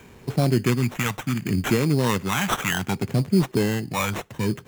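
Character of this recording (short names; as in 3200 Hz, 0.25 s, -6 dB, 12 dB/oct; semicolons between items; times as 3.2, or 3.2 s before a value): phasing stages 2, 0.67 Hz, lowest notch 360–1600 Hz; aliases and images of a low sample rate 4700 Hz, jitter 0%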